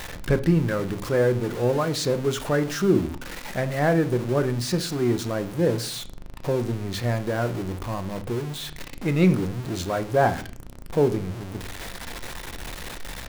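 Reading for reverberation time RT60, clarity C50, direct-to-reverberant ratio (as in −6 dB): 0.45 s, 16.0 dB, 9.0 dB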